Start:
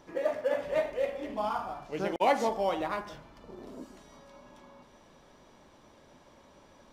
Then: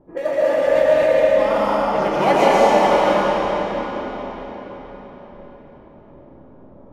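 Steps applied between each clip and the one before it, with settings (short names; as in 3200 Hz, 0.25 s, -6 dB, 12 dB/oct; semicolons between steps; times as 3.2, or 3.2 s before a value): low-pass opened by the level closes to 460 Hz, open at -29.5 dBFS; digital reverb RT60 4.8 s, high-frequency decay 0.85×, pre-delay 85 ms, DRR -8.5 dB; gain +6 dB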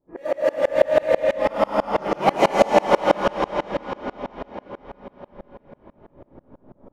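dB-ramp tremolo swelling 6.1 Hz, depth 29 dB; gain +4 dB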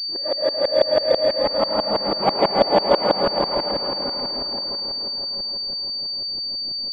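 echo with dull and thin repeats by turns 0.299 s, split 820 Hz, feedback 53%, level -4.5 dB; pulse-width modulation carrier 4600 Hz; gain -1.5 dB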